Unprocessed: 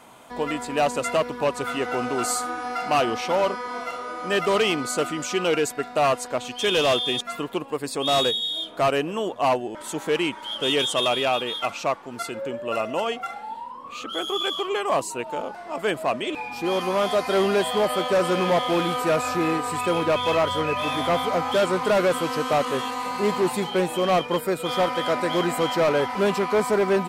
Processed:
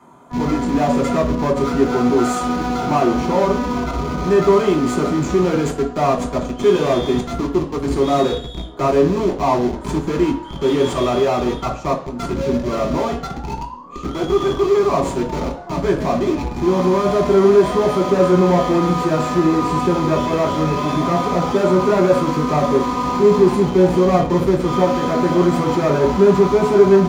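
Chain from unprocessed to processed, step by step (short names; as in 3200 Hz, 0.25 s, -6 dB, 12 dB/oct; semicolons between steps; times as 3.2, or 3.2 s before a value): band shelf 3600 Hz -11 dB; in parallel at -3.5 dB: Schmitt trigger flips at -29.5 dBFS; on the sum: reverb RT60 0.50 s, pre-delay 3 ms, DRR 0 dB; gain -5.5 dB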